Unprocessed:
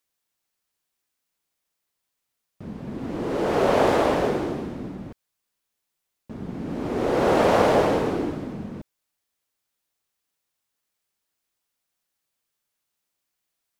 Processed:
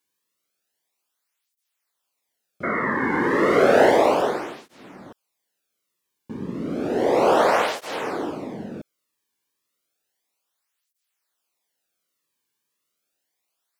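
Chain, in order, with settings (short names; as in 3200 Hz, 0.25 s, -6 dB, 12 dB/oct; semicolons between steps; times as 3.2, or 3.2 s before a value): 3.74–4.21 crackle 240/s -32 dBFS; 2.63–3.91 painted sound noise 210–2200 Hz -27 dBFS; tape flanging out of phase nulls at 0.32 Hz, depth 1.6 ms; gain +5 dB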